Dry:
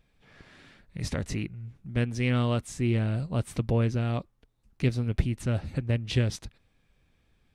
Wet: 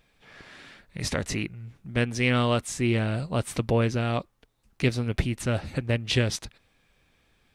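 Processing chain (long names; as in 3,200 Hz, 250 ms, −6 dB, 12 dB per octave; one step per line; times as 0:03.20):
low-shelf EQ 290 Hz −9.5 dB
level +7.5 dB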